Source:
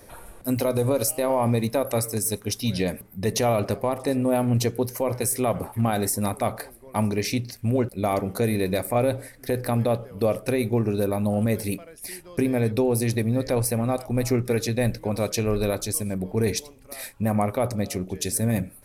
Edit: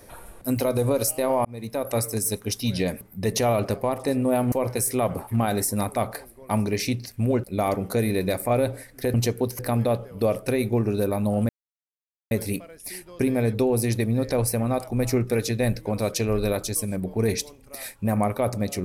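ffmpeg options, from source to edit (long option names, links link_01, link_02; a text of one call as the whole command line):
ffmpeg -i in.wav -filter_complex "[0:a]asplit=6[link_01][link_02][link_03][link_04][link_05][link_06];[link_01]atrim=end=1.45,asetpts=PTS-STARTPTS,afade=type=out:start_time=1.446:duration=0.004:curve=hsin[link_07];[link_02]atrim=start=1.45:end=4.522,asetpts=PTS-STARTPTS,afade=type=in:duration=0.53[link_08];[link_03]atrim=start=4.968:end=9.592[link_09];[link_04]atrim=start=4.518:end=4.972[link_10];[link_05]atrim=start=9.588:end=11.49,asetpts=PTS-STARTPTS,afade=type=out:start_time=1.898:duration=0.004:curve=hsin,apad=pad_dur=0.82[link_11];[link_06]atrim=start=11.49,asetpts=PTS-STARTPTS,afade=type=in:duration=0.004:curve=hsin[link_12];[link_07][link_08]concat=n=2:v=0:a=1[link_13];[link_13][link_09]acrossfade=duration=0.004:curve1=hsin:curve2=hsin[link_14];[link_14][link_10]acrossfade=duration=0.004:curve1=hsin:curve2=hsin[link_15];[link_11][link_12]concat=n=2:v=0:a=1[link_16];[link_15][link_16]acrossfade=duration=0.004:curve1=hsin:curve2=hsin" out.wav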